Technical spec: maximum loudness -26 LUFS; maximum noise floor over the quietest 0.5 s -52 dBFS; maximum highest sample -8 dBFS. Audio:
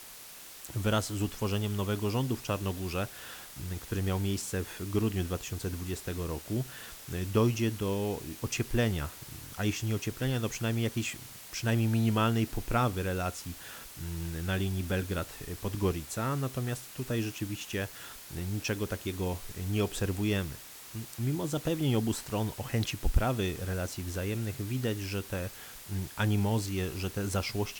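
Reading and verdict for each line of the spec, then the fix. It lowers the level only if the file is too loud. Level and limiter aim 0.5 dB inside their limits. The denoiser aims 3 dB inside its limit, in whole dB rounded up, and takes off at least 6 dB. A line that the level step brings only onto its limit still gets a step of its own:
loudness -32.5 LUFS: OK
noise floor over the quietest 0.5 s -48 dBFS: fail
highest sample -12.5 dBFS: OK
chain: denoiser 7 dB, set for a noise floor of -48 dBFS

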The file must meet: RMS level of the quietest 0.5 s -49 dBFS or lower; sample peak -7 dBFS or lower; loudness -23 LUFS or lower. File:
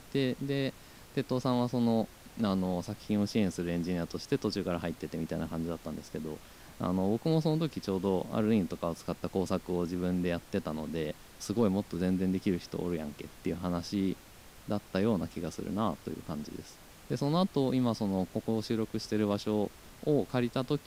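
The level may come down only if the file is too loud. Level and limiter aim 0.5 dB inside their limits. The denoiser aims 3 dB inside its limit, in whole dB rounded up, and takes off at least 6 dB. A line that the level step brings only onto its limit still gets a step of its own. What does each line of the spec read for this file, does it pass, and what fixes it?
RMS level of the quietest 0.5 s -53 dBFS: OK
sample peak -16.5 dBFS: OK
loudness -33.0 LUFS: OK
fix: none

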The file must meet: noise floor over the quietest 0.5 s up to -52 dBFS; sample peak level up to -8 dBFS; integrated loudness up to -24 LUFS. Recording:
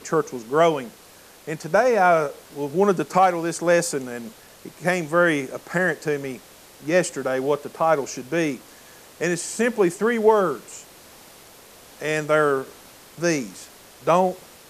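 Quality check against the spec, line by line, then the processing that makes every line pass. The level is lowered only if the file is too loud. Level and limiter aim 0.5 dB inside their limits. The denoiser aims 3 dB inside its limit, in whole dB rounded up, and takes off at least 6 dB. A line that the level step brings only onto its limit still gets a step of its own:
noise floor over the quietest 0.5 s -48 dBFS: fail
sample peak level -6.0 dBFS: fail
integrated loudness -22.0 LUFS: fail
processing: denoiser 6 dB, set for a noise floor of -48 dBFS; gain -2.5 dB

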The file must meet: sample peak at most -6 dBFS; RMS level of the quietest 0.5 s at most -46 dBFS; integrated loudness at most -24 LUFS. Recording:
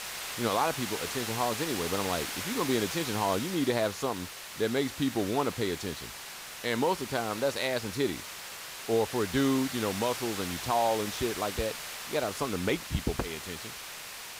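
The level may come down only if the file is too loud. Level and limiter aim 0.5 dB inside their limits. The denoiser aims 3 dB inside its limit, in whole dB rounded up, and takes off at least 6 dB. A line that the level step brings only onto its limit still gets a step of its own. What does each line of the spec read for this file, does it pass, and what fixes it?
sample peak -14.5 dBFS: OK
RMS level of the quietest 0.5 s -43 dBFS: fail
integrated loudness -31.0 LUFS: OK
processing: denoiser 6 dB, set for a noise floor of -43 dBFS

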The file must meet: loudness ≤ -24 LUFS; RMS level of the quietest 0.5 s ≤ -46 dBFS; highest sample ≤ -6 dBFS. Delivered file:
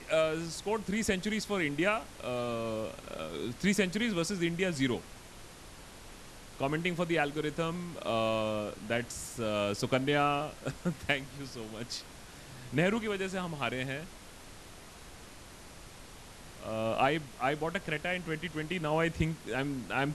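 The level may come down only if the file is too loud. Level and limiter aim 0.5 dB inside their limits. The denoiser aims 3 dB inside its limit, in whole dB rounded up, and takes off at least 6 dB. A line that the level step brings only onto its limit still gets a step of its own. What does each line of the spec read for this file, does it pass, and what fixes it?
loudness -33.0 LUFS: OK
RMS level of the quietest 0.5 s -50 dBFS: OK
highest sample -12.5 dBFS: OK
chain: none

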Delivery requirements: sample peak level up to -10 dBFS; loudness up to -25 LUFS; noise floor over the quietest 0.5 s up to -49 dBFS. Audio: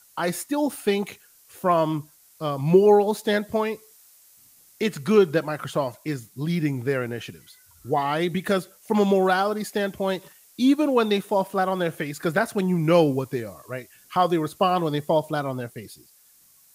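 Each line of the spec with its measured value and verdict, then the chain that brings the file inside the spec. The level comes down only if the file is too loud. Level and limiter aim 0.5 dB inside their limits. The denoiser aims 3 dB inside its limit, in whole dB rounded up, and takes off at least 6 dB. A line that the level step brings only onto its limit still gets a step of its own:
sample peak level -5.5 dBFS: fail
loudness -23.5 LUFS: fail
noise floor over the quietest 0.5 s -56 dBFS: OK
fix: gain -2 dB; limiter -10.5 dBFS

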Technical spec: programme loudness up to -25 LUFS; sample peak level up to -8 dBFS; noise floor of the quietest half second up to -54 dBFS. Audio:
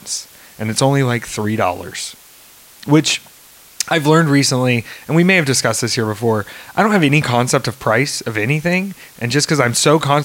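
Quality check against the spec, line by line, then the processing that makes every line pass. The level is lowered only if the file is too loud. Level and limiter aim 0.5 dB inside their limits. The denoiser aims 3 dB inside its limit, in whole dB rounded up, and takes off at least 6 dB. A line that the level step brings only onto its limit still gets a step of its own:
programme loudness -16.0 LUFS: fail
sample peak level -1.5 dBFS: fail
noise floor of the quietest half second -44 dBFS: fail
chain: denoiser 6 dB, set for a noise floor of -44 dBFS; gain -9.5 dB

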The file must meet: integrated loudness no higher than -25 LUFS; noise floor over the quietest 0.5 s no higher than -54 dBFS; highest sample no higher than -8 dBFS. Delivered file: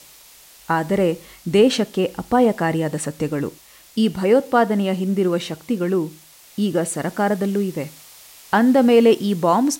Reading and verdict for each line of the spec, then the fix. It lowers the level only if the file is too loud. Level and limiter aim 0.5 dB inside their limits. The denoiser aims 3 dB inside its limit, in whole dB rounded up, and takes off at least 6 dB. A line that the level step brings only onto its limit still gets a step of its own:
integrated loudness -19.5 LUFS: fail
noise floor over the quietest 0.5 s -47 dBFS: fail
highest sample -4.5 dBFS: fail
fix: denoiser 6 dB, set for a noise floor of -47 dBFS; gain -6 dB

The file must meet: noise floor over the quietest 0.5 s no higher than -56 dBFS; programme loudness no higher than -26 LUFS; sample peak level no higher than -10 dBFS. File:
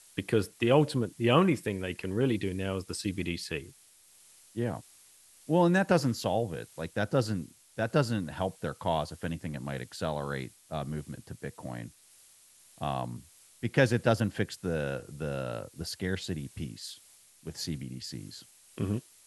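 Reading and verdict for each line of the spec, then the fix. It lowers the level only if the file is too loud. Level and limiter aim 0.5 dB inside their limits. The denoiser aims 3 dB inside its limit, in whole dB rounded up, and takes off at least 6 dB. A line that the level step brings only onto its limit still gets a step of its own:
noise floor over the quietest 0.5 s -59 dBFS: OK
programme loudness -31.5 LUFS: OK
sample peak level -9.5 dBFS: fail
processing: limiter -10.5 dBFS

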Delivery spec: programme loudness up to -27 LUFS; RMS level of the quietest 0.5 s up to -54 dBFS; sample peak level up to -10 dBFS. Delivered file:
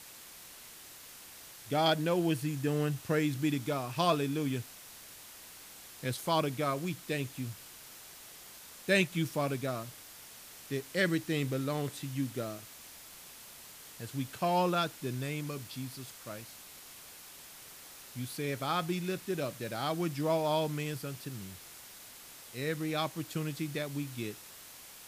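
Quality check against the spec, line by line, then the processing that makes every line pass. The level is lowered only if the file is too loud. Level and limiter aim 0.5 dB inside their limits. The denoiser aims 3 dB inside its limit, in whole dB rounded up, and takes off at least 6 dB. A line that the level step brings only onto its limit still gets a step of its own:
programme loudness -33.5 LUFS: OK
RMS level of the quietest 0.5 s -51 dBFS: fail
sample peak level -14.5 dBFS: OK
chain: denoiser 6 dB, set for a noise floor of -51 dBFS

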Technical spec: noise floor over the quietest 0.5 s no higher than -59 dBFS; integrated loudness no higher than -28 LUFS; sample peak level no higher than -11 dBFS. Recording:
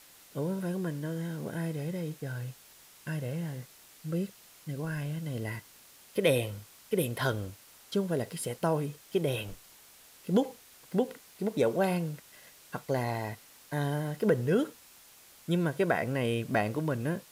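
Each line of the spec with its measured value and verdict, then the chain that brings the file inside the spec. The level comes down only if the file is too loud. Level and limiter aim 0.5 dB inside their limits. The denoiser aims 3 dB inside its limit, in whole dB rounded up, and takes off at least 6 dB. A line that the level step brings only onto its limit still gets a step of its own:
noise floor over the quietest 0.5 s -56 dBFS: fail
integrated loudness -32.5 LUFS: OK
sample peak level -13.5 dBFS: OK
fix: denoiser 6 dB, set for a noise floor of -56 dBFS

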